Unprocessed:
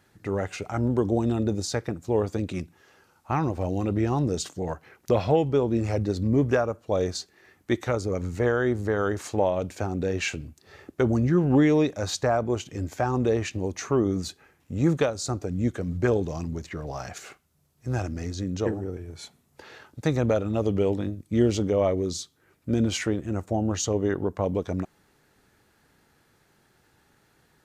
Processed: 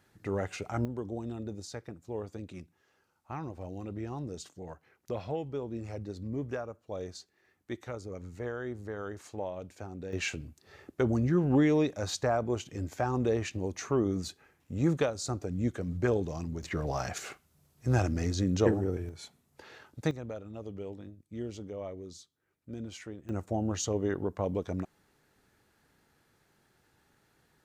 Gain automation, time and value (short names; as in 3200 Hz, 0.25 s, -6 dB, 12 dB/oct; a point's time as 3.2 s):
-4.5 dB
from 0.85 s -13.5 dB
from 10.13 s -5 dB
from 16.63 s +1.5 dB
from 19.09 s -5 dB
from 20.11 s -17 dB
from 23.29 s -5.5 dB